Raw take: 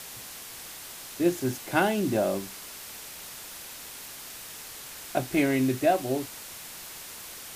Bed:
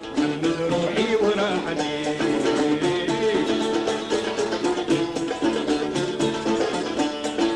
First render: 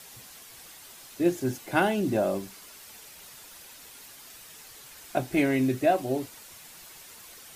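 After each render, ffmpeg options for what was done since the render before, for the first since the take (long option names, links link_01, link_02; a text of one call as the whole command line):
ffmpeg -i in.wav -af "afftdn=noise_reduction=8:noise_floor=-43" out.wav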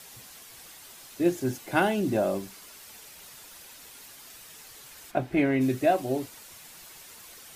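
ffmpeg -i in.wav -filter_complex "[0:a]asplit=3[link_01][link_02][link_03];[link_01]afade=type=out:start_time=5.1:duration=0.02[link_04];[link_02]bass=frequency=250:gain=1,treble=frequency=4000:gain=-14,afade=type=in:start_time=5.1:duration=0.02,afade=type=out:start_time=5.6:duration=0.02[link_05];[link_03]afade=type=in:start_time=5.6:duration=0.02[link_06];[link_04][link_05][link_06]amix=inputs=3:normalize=0" out.wav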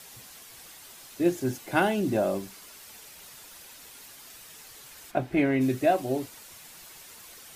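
ffmpeg -i in.wav -af anull out.wav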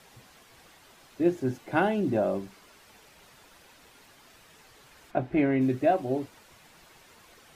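ffmpeg -i in.wav -af "lowpass=frequency=1800:poles=1" out.wav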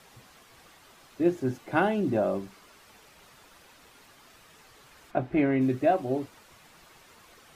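ffmpeg -i in.wav -af "equalizer=frequency=1200:width_type=o:width=0.27:gain=3.5" out.wav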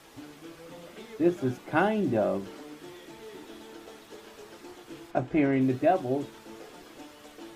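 ffmpeg -i in.wav -i bed.wav -filter_complex "[1:a]volume=-24dB[link_01];[0:a][link_01]amix=inputs=2:normalize=0" out.wav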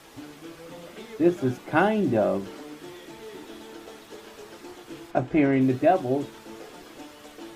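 ffmpeg -i in.wav -af "volume=3.5dB" out.wav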